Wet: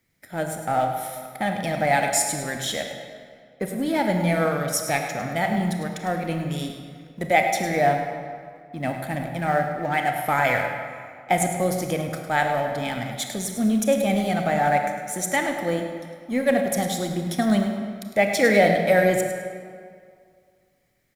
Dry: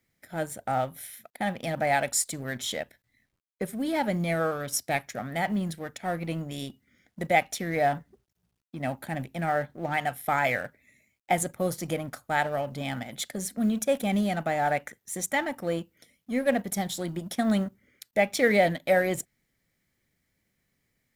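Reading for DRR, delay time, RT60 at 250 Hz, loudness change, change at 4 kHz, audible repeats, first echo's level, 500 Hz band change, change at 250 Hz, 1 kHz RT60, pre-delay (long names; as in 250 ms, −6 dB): 3.5 dB, 104 ms, 2.0 s, +5.0 dB, +4.5 dB, 1, −10.5 dB, +5.5 dB, +5.0 dB, 2.2 s, 27 ms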